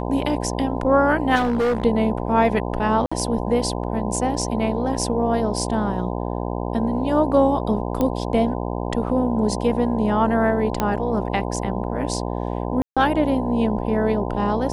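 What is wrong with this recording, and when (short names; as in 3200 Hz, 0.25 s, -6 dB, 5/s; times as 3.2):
buzz 60 Hz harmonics 17 -26 dBFS
1.35–1.85 clipped -17 dBFS
3.06–3.12 gap 55 ms
8.01 pop -10 dBFS
10.8 pop -7 dBFS
12.82–12.97 gap 0.146 s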